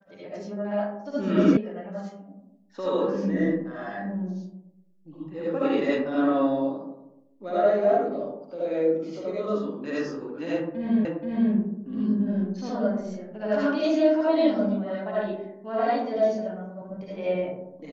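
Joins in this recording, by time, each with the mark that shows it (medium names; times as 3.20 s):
1.57 s: sound stops dead
11.05 s: repeat of the last 0.48 s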